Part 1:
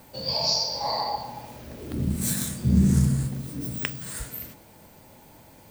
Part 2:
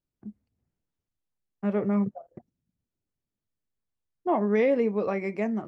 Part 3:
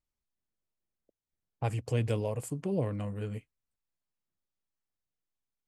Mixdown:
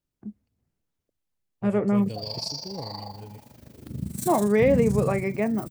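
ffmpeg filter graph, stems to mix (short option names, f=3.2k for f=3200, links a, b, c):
-filter_complex "[0:a]bass=f=250:g=8,treble=f=4k:g=5,tremolo=f=25:d=0.788,highpass=93,adelay=1950,volume=-8.5dB[a];[1:a]volume=3dB[b];[2:a]equalizer=f=1.4k:w=1.2:g=-9,volume=-6dB[c];[a][b][c]amix=inputs=3:normalize=0"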